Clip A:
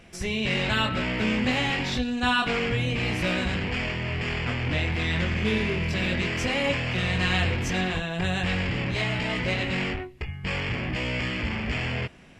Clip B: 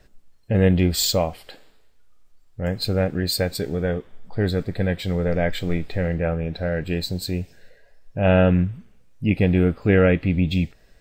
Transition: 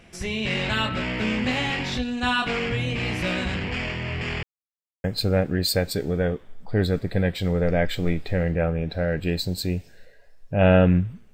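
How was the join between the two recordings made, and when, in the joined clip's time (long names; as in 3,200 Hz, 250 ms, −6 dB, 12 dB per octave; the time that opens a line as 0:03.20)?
clip A
0:04.43–0:05.04: silence
0:05.04: continue with clip B from 0:02.68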